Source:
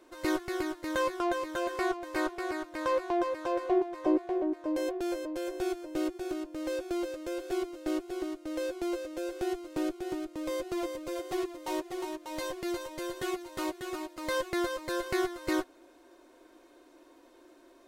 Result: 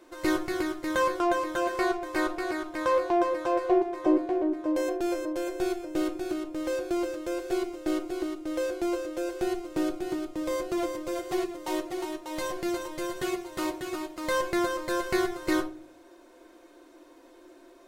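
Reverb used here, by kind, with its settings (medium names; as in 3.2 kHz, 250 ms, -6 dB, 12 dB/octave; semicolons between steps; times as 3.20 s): simulated room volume 390 m³, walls furnished, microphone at 0.78 m; trim +3 dB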